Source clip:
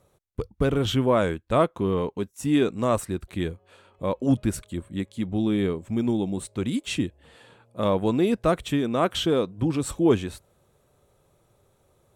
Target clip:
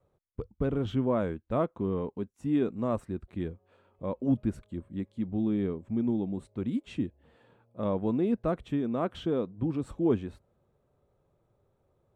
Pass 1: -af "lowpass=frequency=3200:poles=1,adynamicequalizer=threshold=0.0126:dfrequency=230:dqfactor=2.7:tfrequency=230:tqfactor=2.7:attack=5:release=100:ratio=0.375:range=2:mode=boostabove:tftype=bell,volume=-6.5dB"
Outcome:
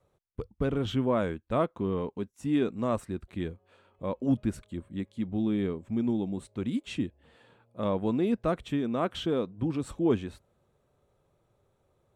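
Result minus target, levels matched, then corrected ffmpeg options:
4,000 Hz band +7.0 dB
-af "lowpass=frequency=1000:poles=1,adynamicequalizer=threshold=0.0126:dfrequency=230:dqfactor=2.7:tfrequency=230:tqfactor=2.7:attack=5:release=100:ratio=0.375:range=2:mode=boostabove:tftype=bell,volume=-6.5dB"

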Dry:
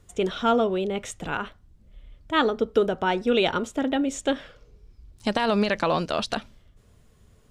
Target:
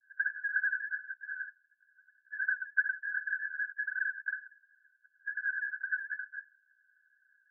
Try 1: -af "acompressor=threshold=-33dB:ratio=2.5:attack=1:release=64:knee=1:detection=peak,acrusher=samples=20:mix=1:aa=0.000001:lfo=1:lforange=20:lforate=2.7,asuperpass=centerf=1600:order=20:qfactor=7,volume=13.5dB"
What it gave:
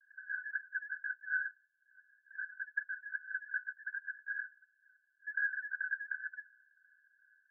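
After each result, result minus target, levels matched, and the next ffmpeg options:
sample-and-hold swept by an LFO: distortion −8 dB; downward compressor: peak gain reduction +4 dB
-af "acompressor=threshold=-33dB:ratio=2.5:attack=1:release=64:knee=1:detection=peak,acrusher=samples=42:mix=1:aa=0.000001:lfo=1:lforange=42:lforate=2.7,asuperpass=centerf=1600:order=20:qfactor=7,volume=13.5dB"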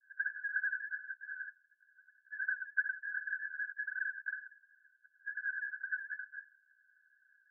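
downward compressor: peak gain reduction +4 dB
-af "acompressor=threshold=-26dB:ratio=2.5:attack=1:release=64:knee=1:detection=peak,acrusher=samples=42:mix=1:aa=0.000001:lfo=1:lforange=42:lforate=2.7,asuperpass=centerf=1600:order=20:qfactor=7,volume=13.5dB"

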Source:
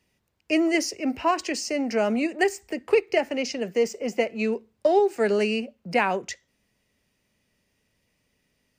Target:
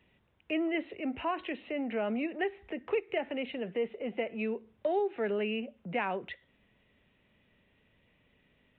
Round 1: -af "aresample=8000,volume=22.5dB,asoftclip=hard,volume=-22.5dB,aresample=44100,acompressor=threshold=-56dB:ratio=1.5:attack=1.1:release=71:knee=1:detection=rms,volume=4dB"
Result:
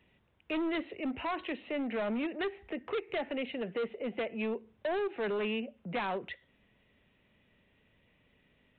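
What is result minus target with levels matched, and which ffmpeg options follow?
gain into a clipping stage and back: distortion +39 dB
-af "aresample=8000,volume=11dB,asoftclip=hard,volume=-11dB,aresample=44100,acompressor=threshold=-56dB:ratio=1.5:attack=1.1:release=71:knee=1:detection=rms,volume=4dB"

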